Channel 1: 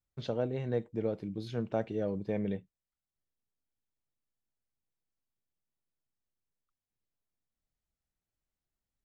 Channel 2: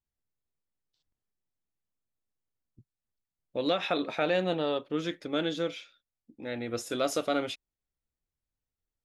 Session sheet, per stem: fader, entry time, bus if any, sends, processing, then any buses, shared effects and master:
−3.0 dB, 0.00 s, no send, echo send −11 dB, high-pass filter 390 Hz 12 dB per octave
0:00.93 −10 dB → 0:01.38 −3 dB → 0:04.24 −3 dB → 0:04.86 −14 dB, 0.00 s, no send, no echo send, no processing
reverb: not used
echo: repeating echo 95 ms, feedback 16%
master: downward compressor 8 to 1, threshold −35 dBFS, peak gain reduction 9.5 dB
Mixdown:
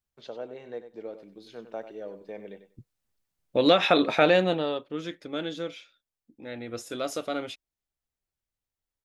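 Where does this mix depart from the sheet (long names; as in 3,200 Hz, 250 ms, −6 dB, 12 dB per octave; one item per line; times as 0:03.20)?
stem 2 −10.0 dB → +1.5 dB
master: missing downward compressor 8 to 1, threshold −35 dBFS, peak gain reduction 9.5 dB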